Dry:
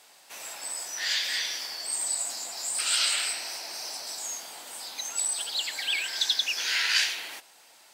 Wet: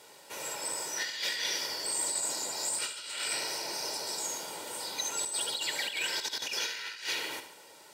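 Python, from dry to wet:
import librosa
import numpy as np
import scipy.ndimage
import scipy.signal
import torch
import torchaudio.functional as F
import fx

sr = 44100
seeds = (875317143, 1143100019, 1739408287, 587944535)

y = scipy.signal.sosfilt(scipy.signal.butter(2, 62.0, 'highpass', fs=sr, output='sos'), x)
y = y + 0.59 * np.pad(y, (int(2.1 * sr / 1000.0), 0))[:len(y)]
y = fx.over_compress(y, sr, threshold_db=-30.0, ratio=-0.5)
y = fx.peak_eq(y, sr, hz=200.0, db=14.5, octaves=2.9)
y = fx.echo_feedback(y, sr, ms=72, feedback_pct=51, wet_db=-11.0)
y = F.gain(torch.from_numpy(y), -4.0).numpy()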